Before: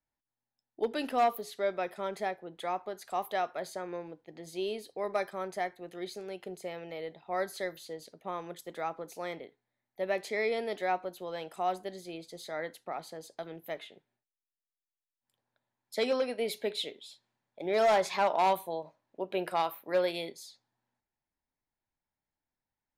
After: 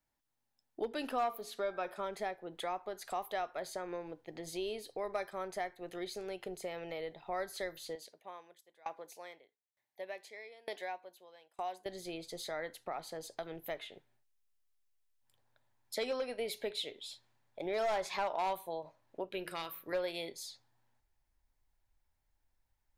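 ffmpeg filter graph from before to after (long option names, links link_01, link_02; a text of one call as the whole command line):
ffmpeg -i in.wav -filter_complex "[0:a]asettb=1/sr,asplit=3[link_01][link_02][link_03];[link_01]atrim=end=1.084[link_04];[link_02]atrim=start=1.08:end=2.05,asetpts=PTS-STARTPTS,afade=type=in:duration=0.004:curve=qsin,afade=type=out:start_time=0.966:duration=0.004:curve=qsin,equalizer=frequency=1200:width_type=o:width=0.81:gain=5.5,bandreject=frequency=2000:width=8.6,bandreject=frequency=113.1:width_type=h:width=4,bandreject=frequency=226.2:width_type=h:width=4,bandreject=frequency=339.3:width_type=h:width=4,bandreject=frequency=452.4:width_type=h:width=4,bandreject=frequency=565.5:width_type=h:width=4,bandreject=frequency=678.6:width_type=h:width=4,bandreject=frequency=791.7:width_type=h:width=4,bandreject=frequency=904.8:width_type=h:width=4,bandreject=frequency=1017.9:width_type=h:width=4,bandreject=frequency=1131:width_type=h:width=4,bandreject=frequency=1244.1:width_type=h:width=4,bandreject=frequency=1357.2:width_type=h:width=4,bandreject=frequency=1470.3:width_type=h:width=4,bandreject=frequency=1583.4:width_type=h:width=4,bandreject=frequency=1696.5:width_type=h:width=4,bandreject=frequency=1809.6:width_type=h:width=4,bandreject=frequency=1922.7:width_type=h:width=4,bandreject=frequency=2035.8:width_type=h:width=4,bandreject=frequency=2148.9:width_type=h:width=4,bandreject=frequency=2262:width_type=h:width=4,bandreject=frequency=2375.1:width_type=h:width=4[link_05];[link_03]atrim=start=2.046[link_06];[link_04][link_05]acrossfade=duration=0.004:curve1=hsin:curve2=qsin[link_07];[link_07][link_06]acrossfade=duration=0.004:curve1=qsin:curve2=hsin,asettb=1/sr,asplit=3[link_08][link_09][link_10];[link_08]atrim=end=7.954[link_11];[link_09]atrim=start=7.95:end=11.86,asetpts=PTS-STARTPTS,afade=type=in:duration=0.004:curve=qsin,afade=type=out:start_time=3.906:duration=0.004:curve=qsin,highpass=frequency=630:poles=1,bandreject=frequency=1300:width=6.1,aeval=exprs='val(0)*pow(10,-28*if(lt(mod(1.1*n/s,1),2*abs(1.1)/1000),1-mod(1.1*n/s,1)/(2*abs(1.1)/1000),(mod(1.1*n/s,1)-2*abs(1.1)/1000)/(1-2*abs(1.1)/1000))/20)':channel_layout=same[link_12];[link_10]atrim=start=11.856[link_13];[link_11][link_12]acrossfade=duration=0.004:curve1=hsin:curve2=qsin[link_14];[link_14][link_13]acrossfade=duration=0.004:curve1=qsin:curve2=hsin,asettb=1/sr,asplit=3[link_15][link_16][link_17];[link_15]atrim=end=19.294[link_18];[link_16]atrim=start=19.29:end=19.93,asetpts=PTS-STARTPTS,afade=type=in:duration=0.004:curve=qsin,afade=type=out:start_time=0.636:duration=0.004:curve=qsin,equalizer=frequency=770:width_type=o:width=1:gain=-15,bandreject=frequency=87.35:width_type=h:width=4,bandreject=frequency=174.7:width_type=h:width=4,bandreject=frequency=262.05:width_type=h:width=4,bandreject=frequency=349.4:width_type=h:width=4,bandreject=frequency=436.75:width_type=h:width=4,bandreject=frequency=524.1:width_type=h:width=4,bandreject=frequency=611.45:width_type=h:width=4,bandreject=frequency=698.8:width_type=h:width=4,bandreject=frequency=786.15:width_type=h:width=4,bandreject=frequency=873.5:width_type=h:width=4,bandreject=frequency=960.85:width_type=h:width=4,bandreject=frequency=1048.2:width_type=h:width=4,bandreject=frequency=1135.55:width_type=h:width=4,bandreject=frequency=1222.9:width_type=h:width=4,bandreject=frequency=1310.25:width_type=h:width=4,bandreject=frequency=1397.6:width_type=h:width=4,bandreject=frequency=1484.95:width_type=h:width=4,bandreject=frequency=1572.3:width_type=h:width=4,bandreject=frequency=1659.65:width_type=h:width=4,bandreject=frequency=1747:width_type=h:width=4[link_19];[link_17]atrim=start=19.926[link_20];[link_18][link_19]acrossfade=duration=0.004:curve1=hsin:curve2=qsin[link_21];[link_21][link_20]acrossfade=duration=0.004:curve1=qsin:curve2=hsin,asubboost=boost=8:cutoff=65,acompressor=threshold=-46dB:ratio=2,volume=4.5dB" out.wav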